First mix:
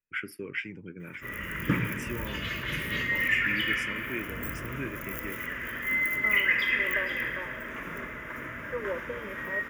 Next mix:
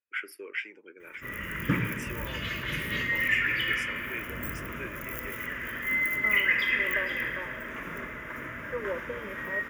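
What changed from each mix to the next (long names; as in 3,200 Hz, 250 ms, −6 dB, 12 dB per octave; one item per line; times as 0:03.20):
first voice: add high-pass filter 400 Hz 24 dB per octave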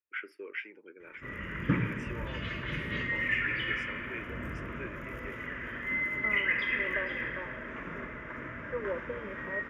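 master: add head-to-tape spacing loss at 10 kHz 22 dB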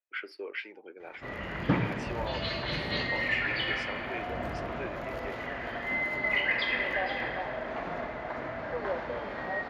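second voice −7.0 dB
master: remove phaser with its sweep stopped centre 1,800 Hz, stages 4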